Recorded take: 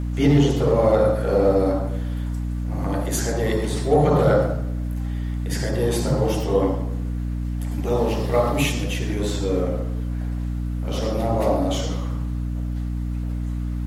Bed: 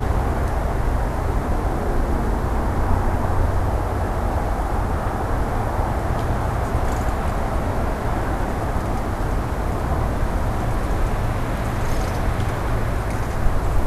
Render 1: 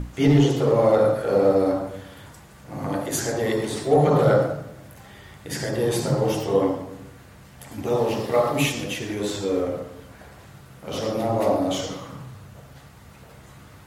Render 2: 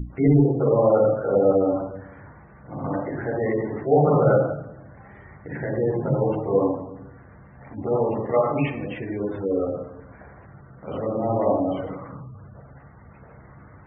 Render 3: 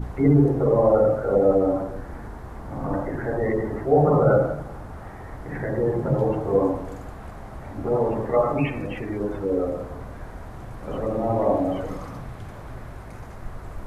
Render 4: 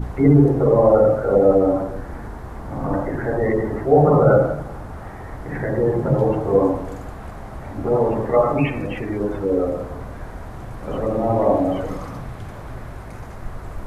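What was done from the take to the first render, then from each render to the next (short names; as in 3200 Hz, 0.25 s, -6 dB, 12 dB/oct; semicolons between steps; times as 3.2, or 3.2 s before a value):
notches 60/120/180/240/300 Hz
LPF 2200 Hz 24 dB/oct; spectral gate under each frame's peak -25 dB strong
add bed -16.5 dB
gain +4 dB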